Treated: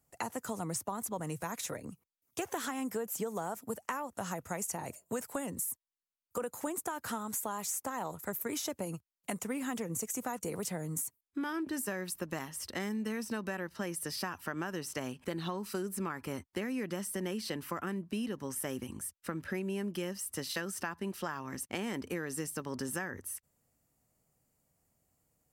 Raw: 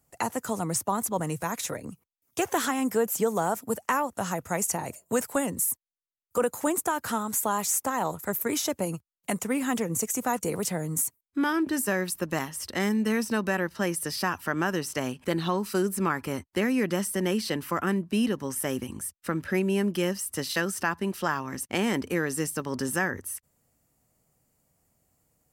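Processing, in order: compressor, threshold -27 dBFS, peak gain reduction 7.5 dB; gain -5.5 dB

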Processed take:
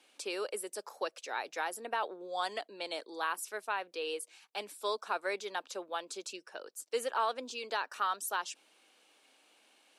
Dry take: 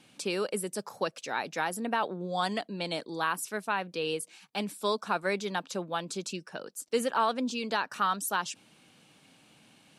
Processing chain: HPF 360 Hz 24 dB/oct; gain -4.5 dB

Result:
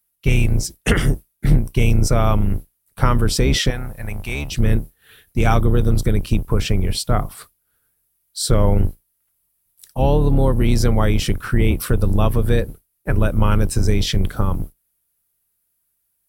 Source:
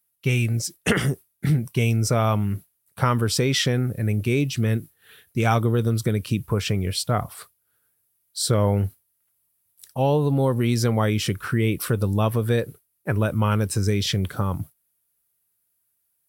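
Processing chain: octaver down 2 oct, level +4 dB; 3.7–4.52 resonant low shelf 550 Hz -10.5 dB, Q 1.5; gain +2 dB

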